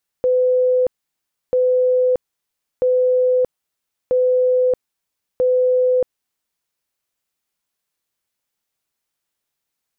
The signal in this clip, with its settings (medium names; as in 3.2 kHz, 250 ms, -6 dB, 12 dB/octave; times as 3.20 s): tone bursts 505 Hz, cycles 317, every 1.29 s, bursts 5, -12.5 dBFS